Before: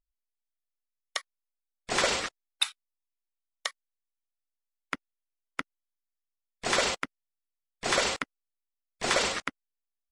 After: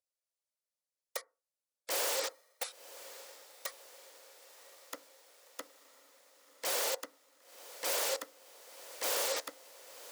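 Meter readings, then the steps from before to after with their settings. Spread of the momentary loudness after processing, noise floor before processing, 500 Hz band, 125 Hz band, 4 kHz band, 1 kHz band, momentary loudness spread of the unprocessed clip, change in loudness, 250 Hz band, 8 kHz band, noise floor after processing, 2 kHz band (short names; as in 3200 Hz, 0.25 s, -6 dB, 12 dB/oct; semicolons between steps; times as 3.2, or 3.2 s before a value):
23 LU, under -85 dBFS, -5.0 dB, under -25 dB, -8.0 dB, -9.0 dB, 13 LU, -5.0 dB, -15.5 dB, -2.5 dB, under -85 dBFS, -11.0 dB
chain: band shelf 6900 Hz +8 dB; notch 740 Hz, Q 12; compressor 2.5:1, threshold -25 dBFS, peak gain reduction 6.5 dB; wrapped overs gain 23.5 dB; resonant high-pass 530 Hz, resonance Q 4.9; diffused feedback echo 1.041 s, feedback 61%, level -15.5 dB; FDN reverb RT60 0.3 s, low-frequency decay 1.2×, high-frequency decay 0.3×, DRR 15 dB; gain -5 dB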